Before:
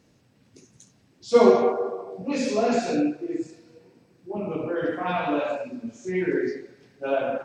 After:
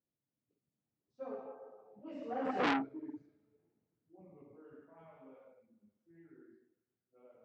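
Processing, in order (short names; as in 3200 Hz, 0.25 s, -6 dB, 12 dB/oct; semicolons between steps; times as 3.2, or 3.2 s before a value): Doppler pass-by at 2.66, 35 m/s, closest 1.9 m; Bessel low-pass 1400 Hz, order 2; core saturation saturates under 2000 Hz; gain +1 dB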